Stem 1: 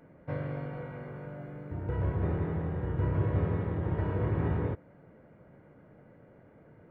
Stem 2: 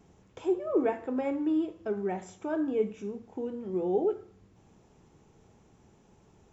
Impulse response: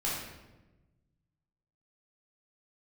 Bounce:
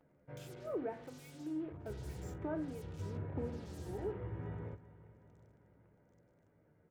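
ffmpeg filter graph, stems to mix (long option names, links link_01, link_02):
-filter_complex "[0:a]asplit=2[link_01][link_02];[link_02]adelay=11.2,afreqshift=-0.55[link_03];[link_01][link_03]amix=inputs=2:normalize=1,volume=-11.5dB,asplit=2[link_04][link_05];[link_05]volume=-17dB[link_06];[1:a]acompressor=threshold=-32dB:ratio=6,acrusher=bits=7:mix=0:aa=0.5,acrossover=split=2400[link_07][link_08];[link_07]aeval=exprs='val(0)*(1-1/2+1/2*cos(2*PI*1.2*n/s))':channel_layout=same[link_09];[link_08]aeval=exprs='val(0)*(1-1/2-1/2*cos(2*PI*1.2*n/s))':channel_layout=same[link_10];[link_09][link_10]amix=inputs=2:normalize=0,volume=-3.5dB[link_11];[link_06]aecho=0:1:386|772|1158|1544|1930|2316|2702|3088|3474:1|0.58|0.336|0.195|0.113|0.0656|0.0381|0.0221|0.0128[link_12];[link_04][link_11][link_12]amix=inputs=3:normalize=0,bandreject=frequency=1100:width=17"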